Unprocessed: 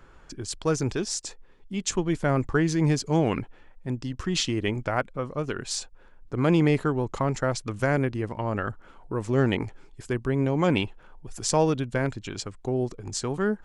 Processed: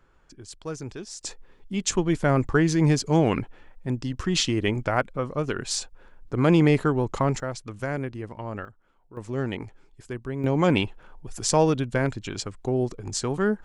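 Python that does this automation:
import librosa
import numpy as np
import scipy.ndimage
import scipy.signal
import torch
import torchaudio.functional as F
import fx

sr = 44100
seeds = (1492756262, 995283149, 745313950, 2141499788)

y = fx.gain(x, sr, db=fx.steps((0.0, -9.0), (1.21, 2.5), (7.4, -5.5), (8.65, -16.0), (9.17, -6.0), (10.44, 2.0)))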